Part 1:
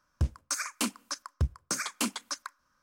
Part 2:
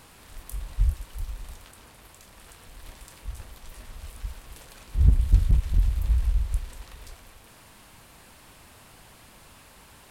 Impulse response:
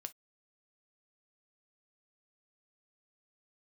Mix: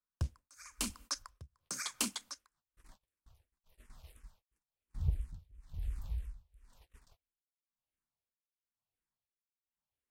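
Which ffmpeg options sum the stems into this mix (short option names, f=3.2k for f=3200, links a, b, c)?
-filter_complex "[0:a]acrossover=split=130|3000[a][b][c];[a]acompressor=threshold=-29dB:ratio=4[d];[b]acompressor=threshold=-44dB:ratio=4[e];[c]acompressor=threshold=-34dB:ratio=4[f];[d][e][f]amix=inputs=3:normalize=0,volume=0dB,asplit=2[g][h];[h]volume=-5.5dB[i];[1:a]asplit=2[j][k];[k]afreqshift=-2.9[l];[j][l]amix=inputs=2:normalize=1,volume=-11dB,afade=t=in:st=1.85:d=0.72:silence=0.316228[m];[2:a]atrim=start_sample=2205[n];[i][n]afir=irnorm=-1:irlink=0[o];[g][m][o]amix=inputs=3:normalize=0,agate=range=-32dB:threshold=-55dB:ratio=16:detection=peak,tremolo=f=1:d=0.97"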